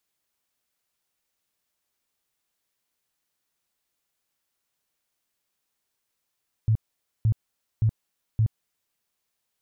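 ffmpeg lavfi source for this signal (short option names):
-f lavfi -i "aevalsrc='0.141*sin(2*PI*110*mod(t,0.57))*lt(mod(t,0.57),8/110)':d=2.28:s=44100"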